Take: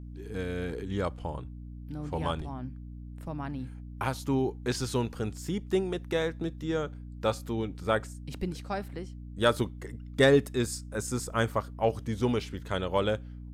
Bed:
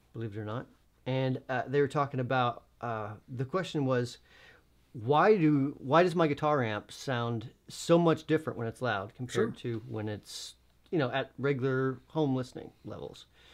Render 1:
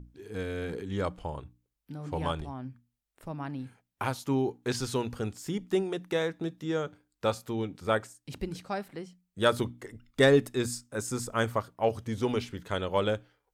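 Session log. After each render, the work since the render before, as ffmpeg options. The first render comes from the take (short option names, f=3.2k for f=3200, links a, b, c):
-af "bandreject=f=60:t=h:w=6,bandreject=f=120:t=h:w=6,bandreject=f=180:t=h:w=6,bandreject=f=240:t=h:w=6,bandreject=f=300:t=h:w=6"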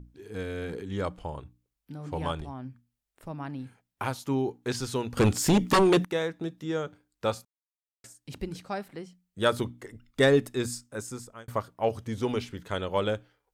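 -filter_complex "[0:a]asettb=1/sr,asplit=3[a][b][c];[a]atrim=end=5.174[d];[b]atrim=start=5.17:end=6.05,asetpts=PTS-STARTPTS,afade=t=in:d=0.004:c=qsin,afade=t=out:st=0.876:d=0.004:c=qsin,aeval=exprs='0.158*sin(PI/2*3.98*val(0)/0.158)':c=same[e];[c]atrim=start=6.046[f];[d][e]acrossfade=d=0.004:c1=hsin:c2=qsin[g];[g][f]acrossfade=d=0.004:c1=qsin:c2=hsin,asplit=4[h][i][j][k];[h]atrim=end=7.45,asetpts=PTS-STARTPTS,afade=t=out:st=7.446:d=0.004:c=hsin[l];[i]atrim=start=7.45:end=8.04,asetpts=PTS-STARTPTS,volume=0[m];[j]atrim=start=8.04:end=11.48,asetpts=PTS-STARTPTS,afade=t=in:d=0.004:c=hsin,afade=t=out:st=2.79:d=0.65[n];[k]atrim=start=11.48,asetpts=PTS-STARTPTS,afade=t=in:d=0.004:c=hsin[o];[l][m][n][o]concat=n=4:v=0:a=1"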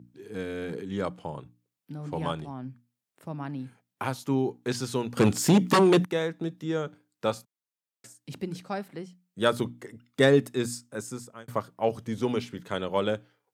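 -af "highpass=f=130:w=0.5412,highpass=f=130:w=1.3066,lowshelf=f=190:g=6"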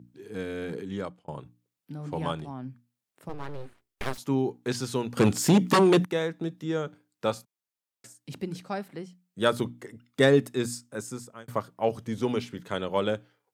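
-filter_complex "[0:a]asettb=1/sr,asplit=3[a][b][c];[a]atrim=end=3.294[d];[b]atrim=start=3.29:end=4.18,asetpts=PTS-STARTPTS,afade=t=in:d=0.004:c=qsin,afade=t=out:st=0.886:d=0.004:c=qsin,aeval=exprs='abs(val(0))':c=same[e];[c]atrim=start=4.176[f];[d][e]acrossfade=d=0.004:c1=hsin:c2=qsin[g];[g][f]acrossfade=d=0.004:c1=qsin:c2=hsin,asplit=2[h][i];[h]atrim=end=1.28,asetpts=PTS-STARTPTS,afade=t=out:st=0.88:d=0.4[j];[i]atrim=start=1.28,asetpts=PTS-STARTPTS,afade=t=in:d=0.004:c=hsin[k];[j][k]concat=n=2:v=0:a=1"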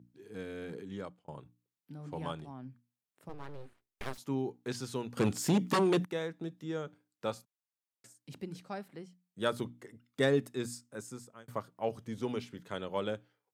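-af "volume=-8dB"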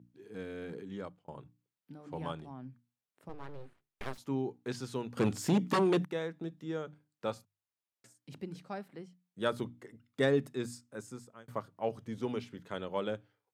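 -af "highshelf=f=4.7k:g=-6,bandreject=f=50:t=h:w=6,bandreject=f=100:t=h:w=6,bandreject=f=150:t=h:w=6"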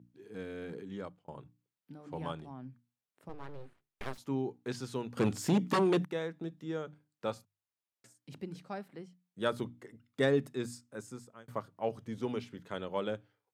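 -af anull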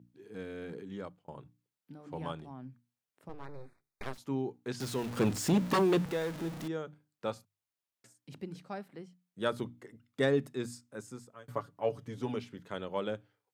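-filter_complex "[0:a]asettb=1/sr,asplit=3[a][b][c];[a]atrim=end=3.454[d];[b]atrim=start=3.45:end=4.03,asetpts=PTS-STARTPTS,afade=t=in:d=0.004:c=qsin,afade=t=out:st=0.576:d=0.004:c=qsin,asuperstop=centerf=3000:order=12:qfactor=2.7[e];[c]atrim=start=4.026[f];[d][e]acrossfade=d=0.004:c1=hsin:c2=qsin[g];[g][f]acrossfade=d=0.004:c1=qsin:c2=hsin,asettb=1/sr,asplit=3[h][i][j];[h]atrim=end=4.804[k];[i]atrim=start=4.8:end=6.68,asetpts=PTS-STARTPTS,afade=t=in:d=0.004:c=qsin,afade=t=out:st=1.876:d=0.004:c=qsin,aeval=exprs='val(0)+0.5*0.0133*sgn(val(0))':c=same[l];[j]atrim=start=6.676[m];[k][l]acrossfade=d=0.004:c1=hsin:c2=qsin[n];[n][m]acrossfade=d=0.004:c1=qsin:c2=hsin,asettb=1/sr,asplit=3[o][p][q];[o]atrim=end=11.334[r];[p]atrim=start=11.33:end=12.36,asetpts=PTS-STARTPTS,afade=t=in:d=0.004:c=qsin,afade=t=out:st=1.026:d=0.004:c=qsin,aecho=1:1:7:0.61,atrim=end_sample=45423[s];[q]atrim=start=12.356[t];[r][s]acrossfade=d=0.004:c1=hsin:c2=qsin[u];[u][t]acrossfade=d=0.004:c1=qsin:c2=hsin"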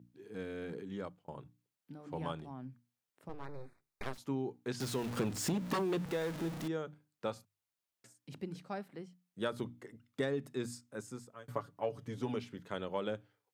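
-af "acompressor=threshold=-31dB:ratio=6"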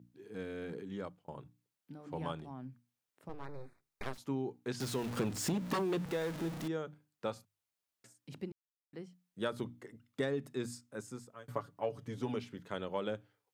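-filter_complex "[0:a]asplit=3[a][b][c];[a]atrim=end=8.52,asetpts=PTS-STARTPTS,afade=t=out:st=8.516:d=0.004:c=hsin[d];[b]atrim=start=8.52:end=8.93,asetpts=PTS-STARTPTS,volume=0[e];[c]atrim=start=8.93,asetpts=PTS-STARTPTS,afade=t=in:d=0.004:c=hsin[f];[d][e][f]concat=n=3:v=0:a=1"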